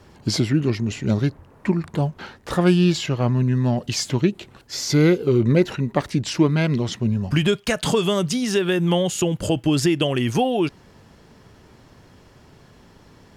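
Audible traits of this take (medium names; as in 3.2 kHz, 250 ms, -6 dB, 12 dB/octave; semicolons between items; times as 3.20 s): noise floor -51 dBFS; spectral tilt -6.0 dB/octave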